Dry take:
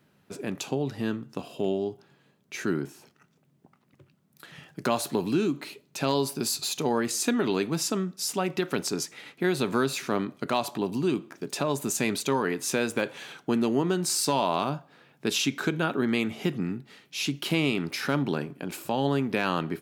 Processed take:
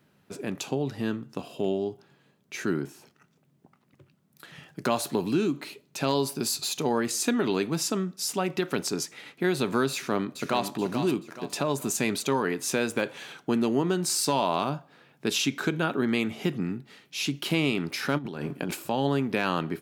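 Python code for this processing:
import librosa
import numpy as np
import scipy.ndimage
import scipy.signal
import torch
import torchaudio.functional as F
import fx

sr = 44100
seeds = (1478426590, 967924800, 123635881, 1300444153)

y = fx.echo_throw(x, sr, start_s=9.92, length_s=0.8, ms=430, feedback_pct=40, wet_db=-8.0)
y = fx.over_compress(y, sr, threshold_db=-35.0, ratio=-1.0, at=(18.17, 18.73), fade=0.02)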